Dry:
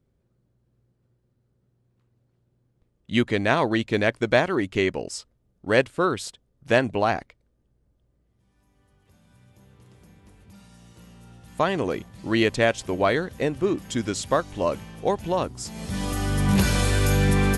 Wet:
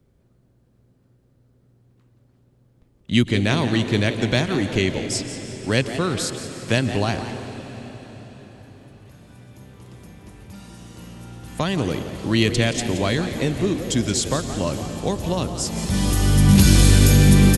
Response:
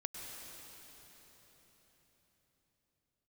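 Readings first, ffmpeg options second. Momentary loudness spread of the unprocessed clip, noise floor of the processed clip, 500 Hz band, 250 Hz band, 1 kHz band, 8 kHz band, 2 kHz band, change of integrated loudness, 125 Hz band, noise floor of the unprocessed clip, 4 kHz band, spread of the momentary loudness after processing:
11 LU, -60 dBFS, -1.5 dB, +5.5 dB, -3.0 dB, +9.5 dB, 0.0 dB, +4.0 dB, +8.5 dB, -70 dBFS, +7.0 dB, 18 LU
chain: -filter_complex "[0:a]acrossover=split=230|3000[a][b][c];[b]acompressor=threshold=-44dB:ratio=2[d];[a][d][c]amix=inputs=3:normalize=0,asplit=4[e][f][g][h];[f]adelay=174,afreqshift=140,volume=-12.5dB[i];[g]adelay=348,afreqshift=280,volume=-22.7dB[j];[h]adelay=522,afreqshift=420,volume=-32.8dB[k];[e][i][j][k]amix=inputs=4:normalize=0,asplit=2[l][m];[1:a]atrim=start_sample=2205,asetrate=37485,aresample=44100[n];[m][n]afir=irnorm=-1:irlink=0,volume=-4dB[o];[l][o]amix=inputs=2:normalize=0,volume=5.5dB"

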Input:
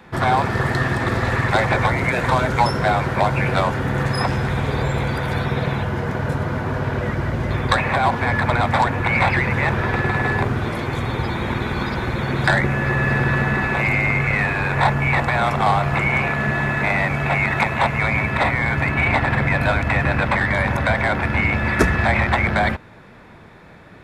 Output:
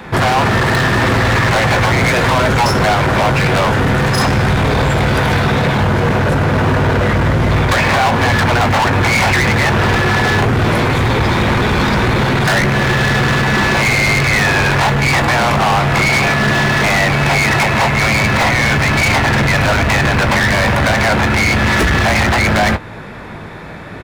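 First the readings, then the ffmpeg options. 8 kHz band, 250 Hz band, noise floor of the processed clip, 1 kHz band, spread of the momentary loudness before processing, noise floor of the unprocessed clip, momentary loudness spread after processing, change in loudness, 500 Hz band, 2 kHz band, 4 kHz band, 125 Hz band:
+17.0 dB, +7.5 dB, -29 dBFS, +6.0 dB, 6 LU, -44 dBFS, 2 LU, +7.0 dB, +7.0 dB, +6.5 dB, +12.5 dB, +6.5 dB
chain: -filter_complex "[0:a]asplit=2[a][b];[b]alimiter=limit=-13dB:level=0:latency=1:release=250,volume=0.5dB[c];[a][c]amix=inputs=2:normalize=0,volume=18.5dB,asoftclip=hard,volume=-18.5dB,asplit=2[d][e];[e]adelay=19,volume=-11dB[f];[d][f]amix=inputs=2:normalize=0,volume=7.5dB"

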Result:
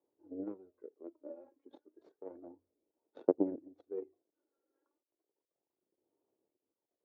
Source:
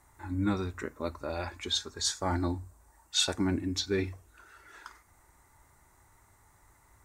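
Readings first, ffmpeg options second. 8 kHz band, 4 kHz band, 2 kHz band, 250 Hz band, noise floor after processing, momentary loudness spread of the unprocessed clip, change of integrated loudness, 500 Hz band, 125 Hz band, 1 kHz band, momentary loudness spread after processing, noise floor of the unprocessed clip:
under -40 dB, under -40 dB, under -30 dB, -8.0 dB, under -85 dBFS, 19 LU, -8.5 dB, -3.0 dB, -25.5 dB, -15.5 dB, 21 LU, -64 dBFS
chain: -af "aphaser=in_gain=1:out_gain=1:delay=3.7:decay=0.67:speed=0.32:type=sinusoidal,acrusher=bits=8:mix=0:aa=0.000001,aeval=exprs='0.282*(cos(1*acos(clip(val(0)/0.282,-1,1)))-cos(1*PI/2))+0.0891*(cos(3*acos(clip(val(0)/0.282,-1,1)))-cos(3*PI/2))':c=same,asuperpass=centerf=400:order=4:qfactor=1.6,volume=7.5dB"

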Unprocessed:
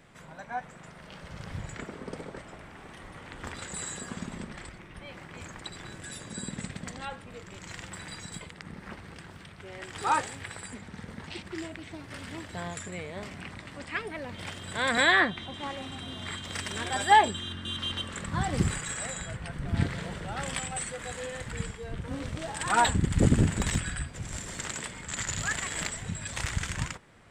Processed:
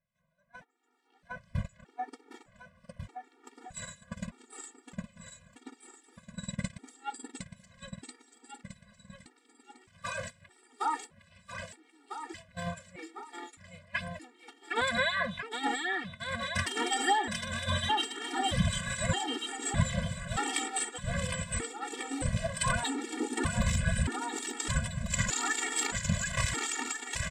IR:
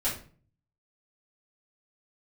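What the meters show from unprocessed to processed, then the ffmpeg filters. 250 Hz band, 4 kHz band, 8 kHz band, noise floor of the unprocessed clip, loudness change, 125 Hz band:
-3.0 dB, -1.0 dB, +0.5 dB, -49 dBFS, -1.5 dB, -2.5 dB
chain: -filter_complex "[0:a]agate=range=-27dB:threshold=-34dB:ratio=16:detection=peak,acompressor=threshold=-33dB:ratio=6,aecho=1:1:760|1444|2060|2614|3112:0.631|0.398|0.251|0.158|0.1,dynaudnorm=f=660:g=3:m=11dB,acrossover=split=2400[a][b];[a]aeval=exprs='val(0)*(1-0.5/2+0.5/2*cos(2*PI*4.4*n/s))':c=same[c];[b]aeval=exprs='val(0)*(1-0.5/2-0.5/2*cos(2*PI*4.4*n/s))':c=same[d];[c][d]amix=inputs=2:normalize=0,afftfilt=real='re*gt(sin(2*PI*0.81*pts/sr)*(1-2*mod(floor(b*sr/1024/240),2)),0)':imag='im*gt(sin(2*PI*0.81*pts/sr)*(1-2*mod(floor(b*sr/1024/240),2)),0)':win_size=1024:overlap=0.75"

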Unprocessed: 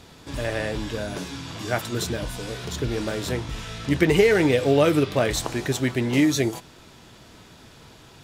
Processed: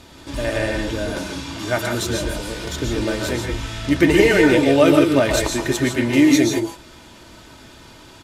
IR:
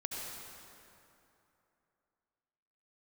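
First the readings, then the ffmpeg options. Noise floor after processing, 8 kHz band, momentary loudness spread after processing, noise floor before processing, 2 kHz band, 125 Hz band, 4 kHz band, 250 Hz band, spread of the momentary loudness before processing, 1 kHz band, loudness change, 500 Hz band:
-44 dBFS, +5.5 dB, 14 LU, -49 dBFS, +6.0 dB, +1.5 dB, +5.0 dB, +7.0 dB, 14 LU, +4.5 dB, +5.0 dB, +4.0 dB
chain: -filter_complex "[0:a]aecho=1:1:3.3:0.42[a];[1:a]atrim=start_sample=2205,afade=t=out:st=0.15:d=0.01,atrim=end_sample=7056,asetrate=26460,aresample=44100[b];[a][b]afir=irnorm=-1:irlink=0,volume=3dB"

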